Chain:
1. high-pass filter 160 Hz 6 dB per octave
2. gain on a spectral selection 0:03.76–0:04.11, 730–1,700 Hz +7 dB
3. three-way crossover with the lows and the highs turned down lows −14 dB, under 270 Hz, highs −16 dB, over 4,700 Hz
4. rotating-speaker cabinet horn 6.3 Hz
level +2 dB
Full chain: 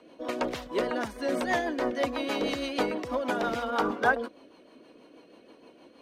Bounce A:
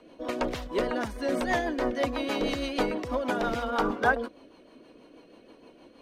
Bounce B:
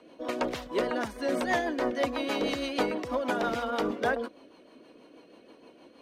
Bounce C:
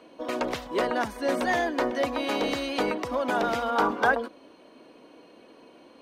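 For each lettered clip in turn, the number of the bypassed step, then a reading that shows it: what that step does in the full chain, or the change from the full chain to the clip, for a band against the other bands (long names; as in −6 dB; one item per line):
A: 1, 125 Hz band +4.5 dB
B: 2, 2 kHz band −2.0 dB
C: 4, change in crest factor −2.0 dB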